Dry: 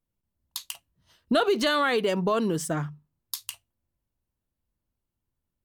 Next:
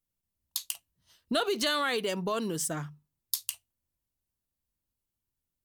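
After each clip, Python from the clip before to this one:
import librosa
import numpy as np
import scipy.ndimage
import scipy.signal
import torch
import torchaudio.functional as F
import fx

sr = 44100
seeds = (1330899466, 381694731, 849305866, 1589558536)

y = fx.high_shelf(x, sr, hz=3200.0, db=11.0)
y = y * librosa.db_to_amplitude(-7.0)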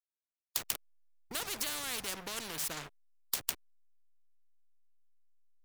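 y = fx.backlash(x, sr, play_db=-36.5)
y = fx.spectral_comp(y, sr, ratio=4.0)
y = y * librosa.db_to_amplitude(-2.5)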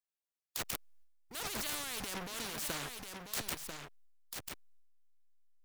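y = fx.transient(x, sr, attack_db=-5, sustain_db=11)
y = y + 10.0 ** (-6.0 / 20.0) * np.pad(y, (int(992 * sr / 1000.0), 0))[:len(y)]
y = y * librosa.db_to_amplitude(-3.0)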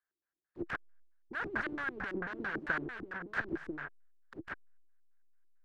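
y = fx.filter_lfo_lowpass(x, sr, shape='square', hz=4.5, low_hz=340.0, high_hz=1600.0, q=7.7)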